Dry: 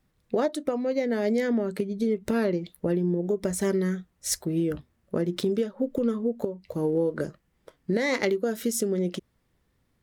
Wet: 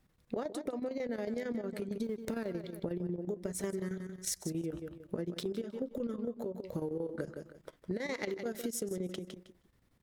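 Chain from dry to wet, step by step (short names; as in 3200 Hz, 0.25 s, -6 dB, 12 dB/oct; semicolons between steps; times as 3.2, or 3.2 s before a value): 2.03–2.51 G.711 law mismatch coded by A; feedback echo 0.158 s, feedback 25%, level -12 dB; chopper 11 Hz, depth 65%, duty 75%; compressor 6:1, threshold -34 dBFS, peak gain reduction 13 dB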